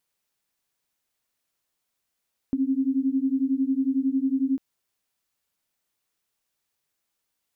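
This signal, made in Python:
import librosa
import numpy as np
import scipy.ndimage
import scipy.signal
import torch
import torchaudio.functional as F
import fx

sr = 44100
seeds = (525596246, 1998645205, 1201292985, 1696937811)

y = fx.two_tone_beats(sr, length_s=2.05, hz=262.0, beat_hz=11.0, level_db=-24.0)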